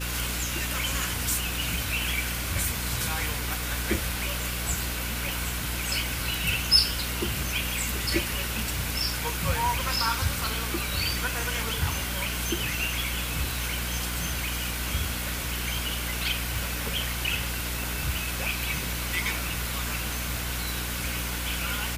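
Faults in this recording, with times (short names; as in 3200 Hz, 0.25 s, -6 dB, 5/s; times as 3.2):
hum 60 Hz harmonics 5 -34 dBFS
16.56 pop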